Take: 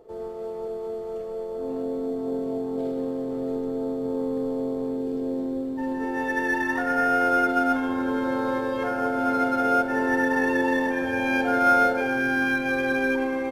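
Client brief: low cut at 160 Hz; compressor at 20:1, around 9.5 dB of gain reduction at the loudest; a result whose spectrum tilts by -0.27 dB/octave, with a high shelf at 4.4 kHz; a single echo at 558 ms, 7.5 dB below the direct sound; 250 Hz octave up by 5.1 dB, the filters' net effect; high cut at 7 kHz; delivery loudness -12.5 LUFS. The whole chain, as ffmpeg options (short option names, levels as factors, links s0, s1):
-af "highpass=160,lowpass=7000,equalizer=f=250:t=o:g=6,highshelf=f=4400:g=-4.5,acompressor=threshold=0.0562:ratio=20,aecho=1:1:558:0.422,volume=6.31"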